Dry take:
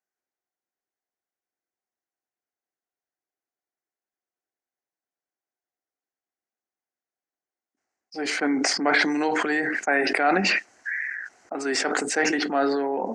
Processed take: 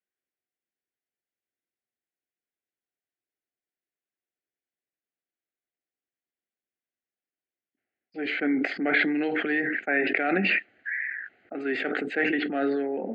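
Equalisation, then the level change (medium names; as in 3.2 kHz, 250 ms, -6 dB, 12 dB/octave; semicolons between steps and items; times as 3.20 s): high-pass 61 Hz; low-pass 3.7 kHz 24 dB/octave; static phaser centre 2.4 kHz, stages 4; 0.0 dB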